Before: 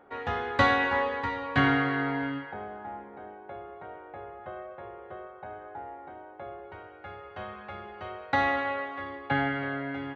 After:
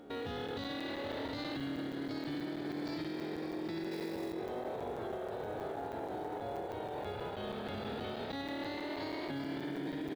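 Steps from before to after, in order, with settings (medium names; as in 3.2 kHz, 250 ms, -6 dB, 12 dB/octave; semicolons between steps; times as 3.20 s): spectrogram pixelated in time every 50 ms; graphic EQ 250/1000/2000/4000 Hz +8/-10/-8/+11 dB; on a send: frequency-shifting echo 98 ms, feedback 61%, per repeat +38 Hz, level -6.5 dB; on the sum: ever faster or slower copies 791 ms, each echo +1 st, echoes 3; in parallel at -7.5 dB: short-mantissa float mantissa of 2-bit; on the sum: compression, threshold -32 dBFS, peak gain reduction 18 dB; peak limiter -33.5 dBFS, peak gain reduction 12 dB; 3.91–4.33 s: treble shelf 4.5 kHz +10.5 dB; crackling interface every 0.16 s, samples 256, zero, from 0.48 s; trim +2 dB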